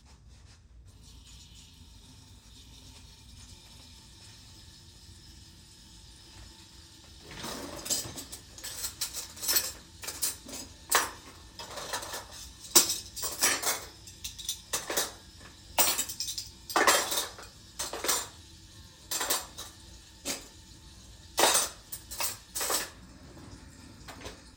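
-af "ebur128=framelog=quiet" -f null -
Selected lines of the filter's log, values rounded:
Integrated loudness:
  I:         -29.7 LUFS
  Threshold: -42.4 LUFS
Loudness range:
  LRA:        22.1 LU
  Threshold: -52.0 LUFS
  LRA low:   -50.7 LUFS
  LRA high:  -28.5 LUFS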